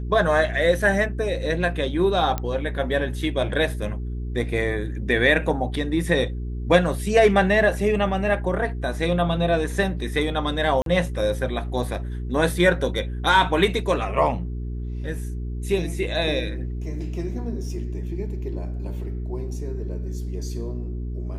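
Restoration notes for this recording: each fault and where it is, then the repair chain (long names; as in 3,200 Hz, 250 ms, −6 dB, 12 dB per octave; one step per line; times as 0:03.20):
mains hum 60 Hz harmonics 7 −29 dBFS
0:02.38: click −12 dBFS
0:10.82–0:10.86: drop-out 42 ms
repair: click removal
hum removal 60 Hz, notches 7
repair the gap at 0:10.82, 42 ms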